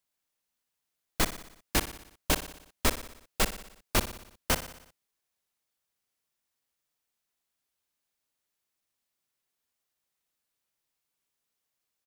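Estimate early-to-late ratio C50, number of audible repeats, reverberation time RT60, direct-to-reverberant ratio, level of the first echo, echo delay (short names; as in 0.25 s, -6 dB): none, 5, none, none, -13.0 dB, 60 ms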